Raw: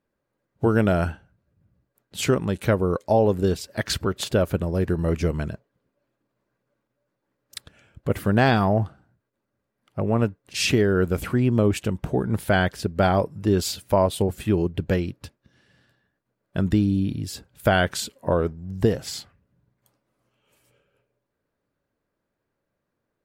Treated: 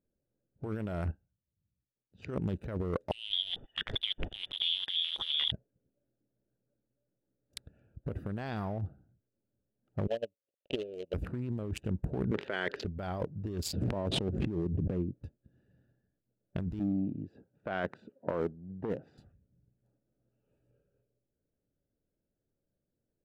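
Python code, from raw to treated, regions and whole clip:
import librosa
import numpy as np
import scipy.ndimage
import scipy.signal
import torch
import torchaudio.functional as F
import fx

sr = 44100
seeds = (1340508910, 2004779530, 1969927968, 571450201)

y = fx.chain(x, sr, fx.lowpass(hz=5500.0, slope=24),
    fx.upward_expand(threshold_db=-51.0, expansion=1.5), at=(1.11, 2.3))
y = fx.chain(y, sr, fx.over_compress(threshold_db=-27.0, ratio=-1.0),
    fx.freq_invert(carrier_hz=3500), at=(3.11, 5.52))
y = fx.chain(y, sr, fx.dead_time(dead_ms=0.25),
    fx.double_bandpass(hz=1300.0, octaves=2.4),
    fx.transient(attack_db=11, sustain_db=-10), at=(10.07, 11.14))
y = fx.chain(y, sr, fx.resample_bad(factor=4, down='filtered', up='hold'),
    fx.cabinet(low_hz=380.0, low_slope=12, high_hz=4400.0, hz=(410.0, 730.0, 1900.0, 3200.0), db=(8, -7, 6, 4)),
    fx.env_flatten(amount_pct=50), at=(12.31, 12.85))
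y = fx.chain(y, sr, fx.bandpass_q(hz=260.0, q=0.57),
    fx.air_absorb(metres=55.0),
    fx.pre_swell(db_per_s=60.0), at=(13.73, 15.15))
y = fx.chain(y, sr, fx.bandpass_edges(low_hz=210.0, high_hz=2000.0),
    fx.transformer_sat(knee_hz=760.0), at=(16.79, 19.18))
y = fx.wiener(y, sr, points=41)
y = fx.low_shelf(y, sr, hz=72.0, db=6.0)
y = fx.over_compress(y, sr, threshold_db=-25.0, ratio=-1.0)
y = F.gain(torch.from_numpy(y), -8.0).numpy()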